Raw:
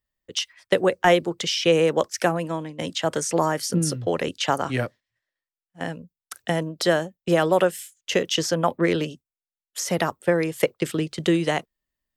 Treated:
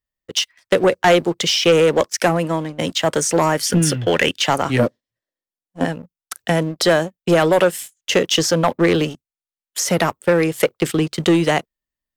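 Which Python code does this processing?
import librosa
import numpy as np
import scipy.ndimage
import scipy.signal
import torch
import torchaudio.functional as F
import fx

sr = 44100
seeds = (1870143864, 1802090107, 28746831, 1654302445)

y = fx.spec_box(x, sr, start_s=3.66, length_s=0.72, low_hz=1400.0, high_hz=3600.0, gain_db=11)
y = fx.graphic_eq_10(y, sr, hz=(250, 500, 2000), db=(9, 6, -7), at=(4.79, 5.85))
y = fx.leveller(y, sr, passes=2)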